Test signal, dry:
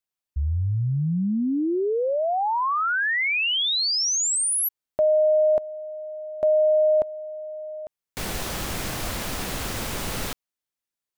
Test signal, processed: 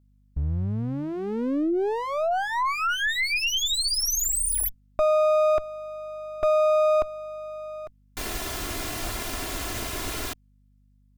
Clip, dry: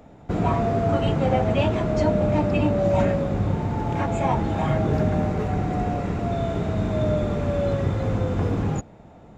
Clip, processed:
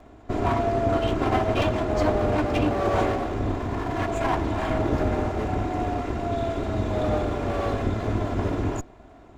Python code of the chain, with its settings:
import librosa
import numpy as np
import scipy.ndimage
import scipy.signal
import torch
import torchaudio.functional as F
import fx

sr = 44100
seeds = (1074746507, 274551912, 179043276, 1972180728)

y = fx.lower_of_two(x, sr, delay_ms=2.9)
y = fx.add_hum(y, sr, base_hz=50, snr_db=34)